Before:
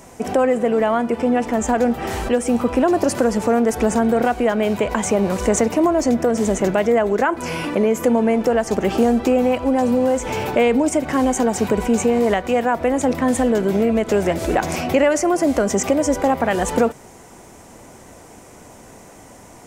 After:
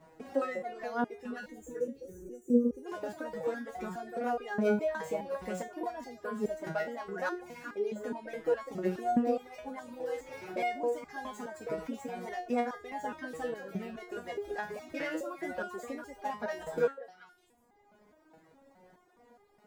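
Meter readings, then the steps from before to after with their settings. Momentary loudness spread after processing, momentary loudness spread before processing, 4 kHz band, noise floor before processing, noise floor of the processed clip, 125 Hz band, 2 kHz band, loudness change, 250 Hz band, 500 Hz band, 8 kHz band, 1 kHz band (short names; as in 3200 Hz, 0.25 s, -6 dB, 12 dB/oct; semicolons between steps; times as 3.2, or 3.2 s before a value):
12 LU, 3 LU, -19.5 dB, -43 dBFS, -66 dBFS, -19.5 dB, -14.0 dB, -17.0 dB, -18.5 dB, -17.0 dB, -27.5 dB, -15.5 dB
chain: median filter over 15 samples; bell 1700 Hz +3.5 dB 0.58 oct; spectral gain 1.49–2.86, 580–5700 Hz -23 dB; low shelf 67 Hz -8 dB; delay with a stepping band-pass 0.2 s, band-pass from 560 Hz, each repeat 1.4 oct, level -3.5 dB; reverb removal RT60 1.6 s; stepped resonator 4.8 Hz 160–410 Hz; gain -1 dB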